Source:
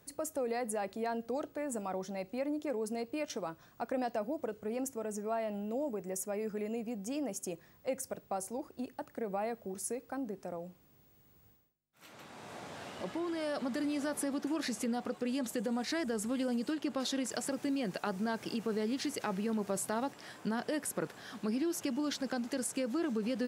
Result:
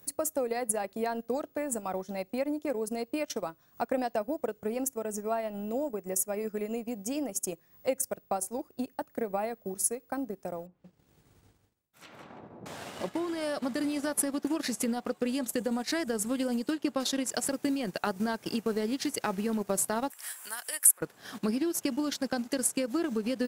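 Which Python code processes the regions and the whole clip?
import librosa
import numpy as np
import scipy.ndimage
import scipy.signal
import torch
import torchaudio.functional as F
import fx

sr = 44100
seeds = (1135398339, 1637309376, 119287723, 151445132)

y = fx.chain(x, sr, fx.env_lowpass_down(base_hz=430.0, full_db=-45.0),
    fx.echo_single(ms=180, db=-6.5), at=(10.66, 12.66))
y = fx.chain(y, sr, fx.highpass(hz=1400.0, slope=12),
    fx.high_shelf_res(hz=6900.0, db=11.5, q=1.5),
    fx.band_squash(depth_pct=40), at=(20.1, 21.01))
y = fx.high_shelf(y, sr, hz=10000.0, db=12.0)
y = fx.transient(y, sr, attack_db=4, sustain_db=-11)
y = y * 10.0 ** (3.0 / 20.0)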